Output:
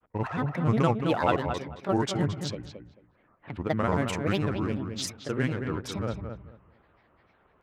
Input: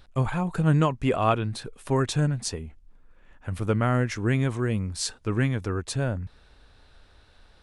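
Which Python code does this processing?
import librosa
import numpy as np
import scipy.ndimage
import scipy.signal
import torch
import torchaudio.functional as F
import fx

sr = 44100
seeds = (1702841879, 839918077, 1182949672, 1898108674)

y = fx.wiener(x, sr, points=9)
y = scipy.signal.sosfilt(scipy.signal.bessel(2, 160.0, 'highpass', norm='mag', fs=sr, output='sos'), y)
y = fx.env_lowpass(y, sr, base_hz=2400.0, full_db=-21.0)
y = fx.granulator(y, sr, seeds[0], grain_ms=100.0, per_s=20.0, spray_ms=27.0, spread_st=7)
y = fx.echo_filtered(y, sr, ms=220, feedback_pct=21, hz=2400.0, wet_db=-7.0)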